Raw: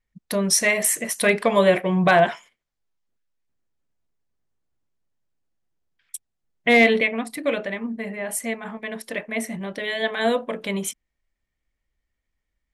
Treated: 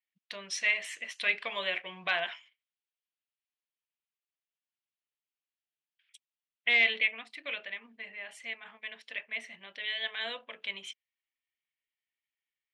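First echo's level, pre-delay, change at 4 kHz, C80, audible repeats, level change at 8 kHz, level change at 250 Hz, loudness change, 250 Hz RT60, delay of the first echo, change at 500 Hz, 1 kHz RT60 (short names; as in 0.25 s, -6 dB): none, none, -4.5 dB, none, none, under -20 dB, -30.0 dB, -10.0 dB, none, none, -22.0 dB, none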